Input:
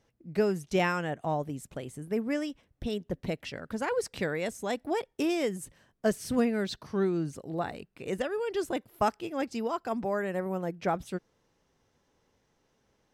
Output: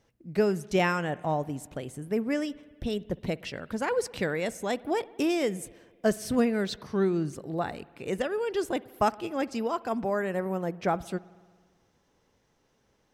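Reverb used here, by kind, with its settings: spring tank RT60 1.6 s, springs 57 ms, chirp 50 ms, DRR 20 dB; trim +2 dB

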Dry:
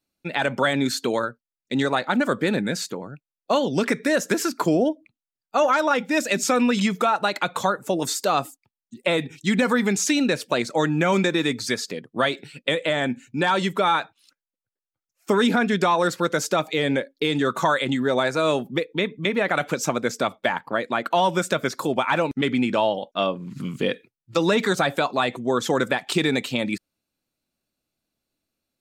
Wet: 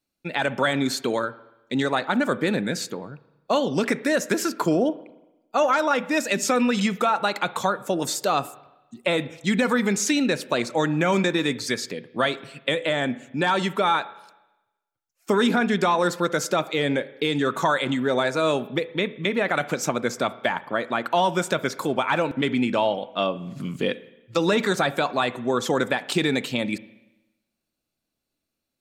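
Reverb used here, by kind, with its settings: spring tank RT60 1 s, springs 34/56 ms, chirp 75 ms, DRR 16.5 dB; trim -1 dB

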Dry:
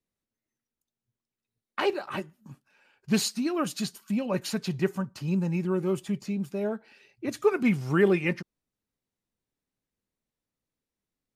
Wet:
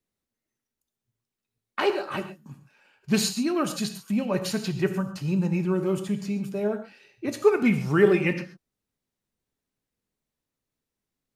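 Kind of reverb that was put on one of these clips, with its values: gated-style reverb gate 160 ms flat, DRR 8 dB; trim +2 dB

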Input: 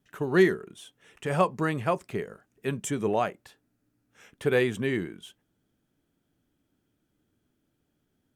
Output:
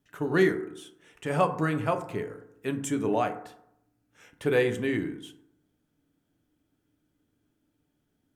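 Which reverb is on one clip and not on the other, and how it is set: FDN reverb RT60 0.76 s, low-frequency decay 1.1×, high-frequency decay 0.4×, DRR 6.5 dB; trim -1.5 dB

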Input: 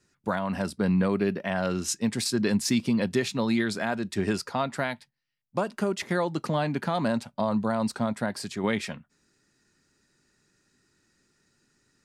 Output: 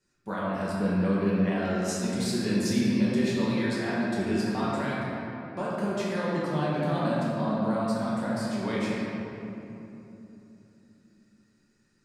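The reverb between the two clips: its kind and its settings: simulated room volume 150 m³, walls hard, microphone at 1.1 m; trim -10 dB

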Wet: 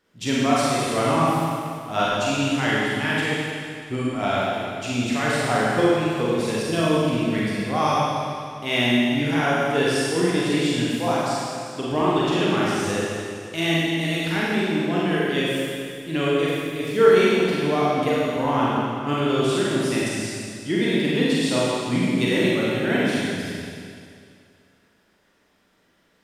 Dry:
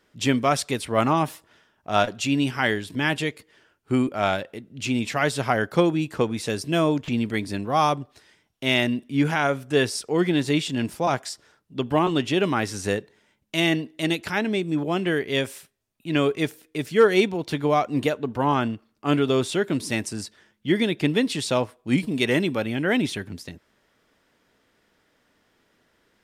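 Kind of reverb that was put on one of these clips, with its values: Schroeder reverb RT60 2.3 s, combs from 33 ms, DRR -7 dB; trim -5.5 dB

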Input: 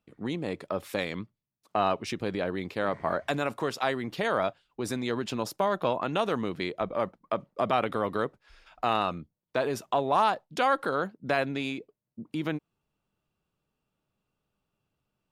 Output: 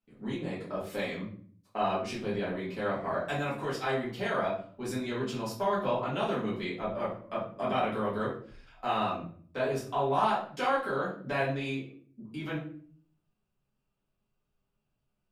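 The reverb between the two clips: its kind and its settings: simulated room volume 52 m³, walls mixed, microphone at 2 m; trim -13 dB

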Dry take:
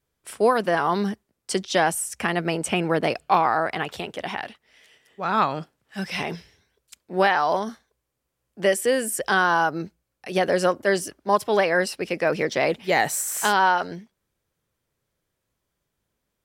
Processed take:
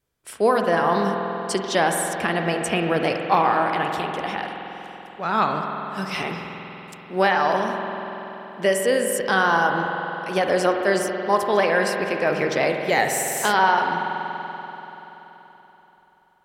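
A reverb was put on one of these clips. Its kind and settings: spring tank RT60 3.9 s, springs 47 ms, chirp 25 ms, DRR 3 dB

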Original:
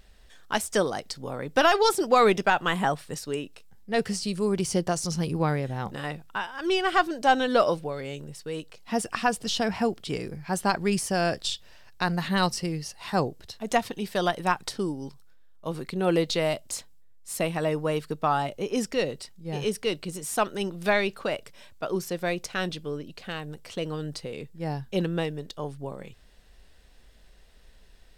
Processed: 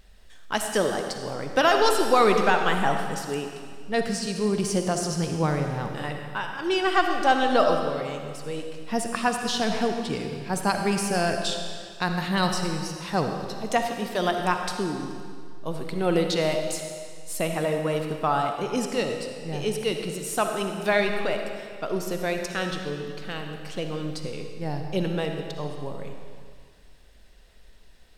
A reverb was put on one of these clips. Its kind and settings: algorithmic reverb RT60 2 s, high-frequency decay 0.95×, pre-delay 20 ms, DRR 4 dB

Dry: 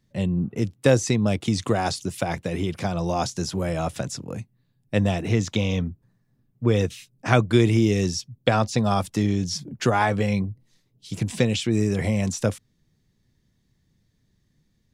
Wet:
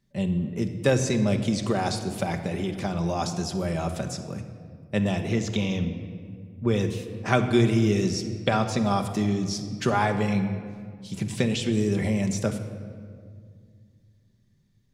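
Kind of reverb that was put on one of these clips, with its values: simulated room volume 3600 m³, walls mixed, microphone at 1.2 m; trim -3.5 dB

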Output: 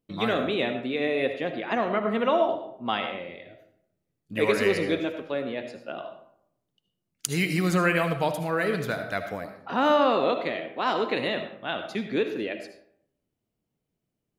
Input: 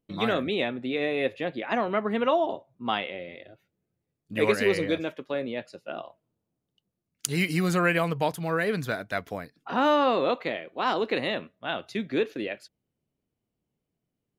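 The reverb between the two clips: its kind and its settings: algorithmic reverb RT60 0.7 s, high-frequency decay 0.55×, pre-delay 35 ms, DRR 7 dB

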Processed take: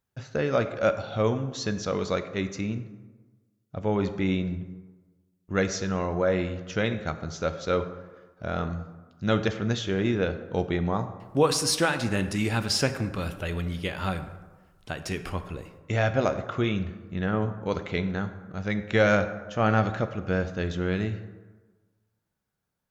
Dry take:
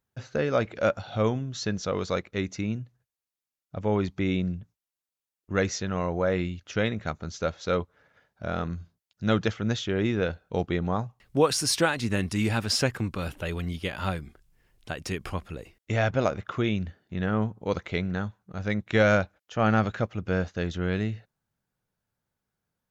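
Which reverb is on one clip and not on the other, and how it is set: plate-style reverb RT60 1.3 s, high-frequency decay 0.5×, DRR 9 dB

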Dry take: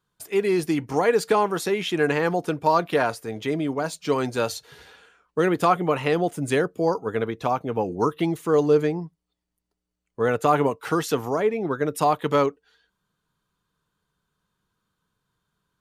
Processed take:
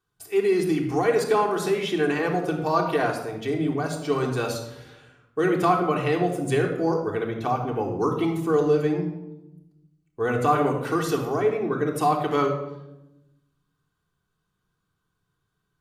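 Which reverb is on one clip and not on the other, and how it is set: simulated room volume 3300 m³, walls furnished, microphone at 3.5 m; trim -4.5 dB

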